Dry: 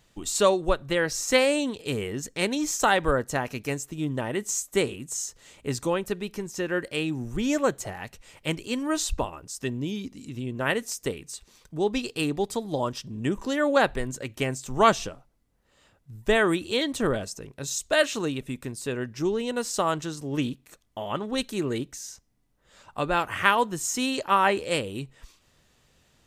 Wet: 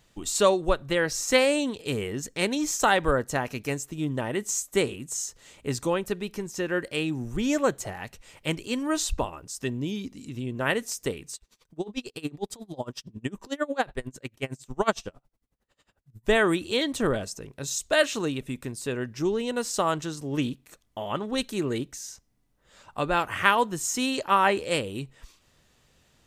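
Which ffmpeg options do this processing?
-filter_complex "[0:a]asettb=1/sr,asplit=3[s0][s1][s2];[s0]atrim=end=11.354[s3];[s1]atrim=start=11.35:end=16.28,asetpts=PTS-STARTPTS,afade=t=in:d=0.004:c=qsin,afade=t=out:st=4.926:d=0.004:c=qsin,aeval=exprs='val(0)*pow(10,-27*(0.5-0.5*cos(2*PI*11*n/s))/20)':c=same[s4];[s2]atrim=start=16.276[s5];[s3][s4]acrossfade=d=0.004:c1=hsin:c2=qsin[s6];[s6][s5]acrossfade=d=0.004:c1=qsin:c2=hsin"

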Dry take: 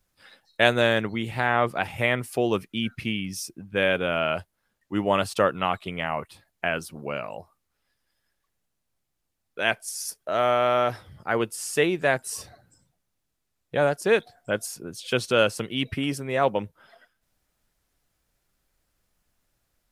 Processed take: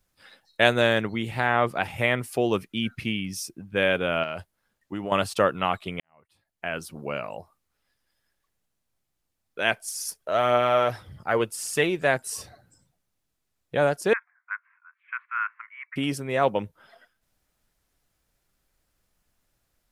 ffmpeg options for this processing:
-filter_complex "[0:a]asettb=1/sr,asplit=3[s0][s1][s2];[s0]atrim=end=4.234[s3];[s1]atrim=start=4.23:end=5.12,asetpts=PTS-STARTPTS,afade=t=in:d=0.004:c=qsin,afade=t=out:st=0.886:d=0.004:c=qsin,acompressor=threshold=0.0447:ratio=6:attack=3.2:release=140:knee=1:detection=peak[s4];[s2]atrim=start=5.116[s5];[s3][s4]acrossfade=d=0.004:c1=hsin:c2=qsin[s6];[s6][s5]acrossfade=d=0.004:c1=qsin:c2=hsin,asplit=3[s7][s8][s9];[s7]afade=t=out:st=9.82:d=0.02[s10];[s8]aphaser=in_gain=1:out_gain=1:delay=2.2:decay=0.31:speed=1.8:type=triangular,afade=t=in:st=9.82:d=0.02,afade=t=out:st=12.04:d=0.02[s11];[s9]afade=t=in:st=12.04:d=0.02[s12];[s10][s11][s12]amix=inputs=3:normalize=0,asettb=1/sr,asplit=3[s13][s14][s15];[s13]atrim=end=14.134[s16];[s14]atrim=start=14.13:end=15.96,asetpts=PTS-STARTPTS,afade=t=in:d=0.004:c=qsin,afade=t=out:st=1.826:d=0.004:c=qsin,asuperpass=centerf=1500:order=12:qfactor=1.2[s17];[s15]atrim=start=15.956[s18];[s16][s17]acrossfade=d=0.004:c1=hsin:c2=qsin[s19];[s19][s18]acrossfade=d=0.004:c1=qsin:c2=hsin,asplit=2[s20][s21];[s20]atrim=end=6,asetpts=PTS-STARTPTS,afade=t=out:st=5.996:d=0.004:c=hsin[s22];[s21]atrim=start=6,asetpts=PTS-STARTPTS,afade=t=in:d=0.91:c=qua[s23];[s22][s23]concat=n=2:v=0:a=1"

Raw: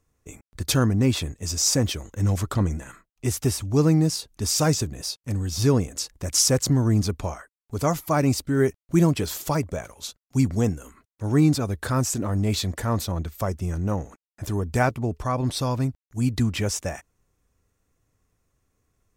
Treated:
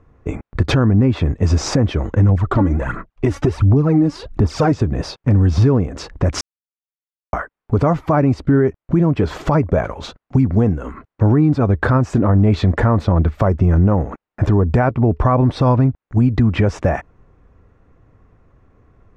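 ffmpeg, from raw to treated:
-filter_complex "[0:a]asettb=1/sr,asplit=3[s0][s1][s2];[s0]atrim=end=2.294[s3];[s1]atrim=start=2.29:end=4.72,asetpts=PTS-STARTPTS,afade=t=in:d=0.004:c=qsin,afade=t=out:st=2.426:d=0.004:c=qsin,aphaser=in_gain=1:out_gain=1:delay=3.6:decay=0.64:speed=1.4:type=sinusoidal[s4];[s2]atrim=start=4.716[s5];[s3][s4]acrossfade=d=0.004:c1=hsin:c2=qsin[s6];[s6][s5]acrossfade=d=0.004:c1=qsin:c2=hsin,asplit=3[s7][s8][s9];[s7]atrim=end=6.41,asetpts=PTS-STARTPTS,afade=t=out:st=6.406:d=0.004:c=hsin[s10];[s8]atrim=start=6.41:end=7.33,asetpts=PTS-STARTPTS,volume=0[s11];[s9]atrim=start=7.33,asetpts=PTS-STARTPTS,afade=t=in:d=0.004:c=hsin[s12];[s10][s11][s12]concat=n=3:v=0:a=1,lowpass=1500,acompressor=threshold=0.0316:ratio=6,alimiter=level_in=17.8:limit=0.891:release=50:level=0:latency=1,volume=0.562"

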